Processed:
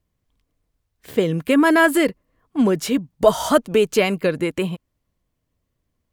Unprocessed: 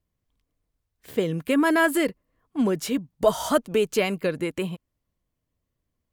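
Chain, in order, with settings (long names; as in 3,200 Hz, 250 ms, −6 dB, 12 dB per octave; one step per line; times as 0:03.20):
high-shelf EQ 7,800 Hz −3 dB
level +5.5 dB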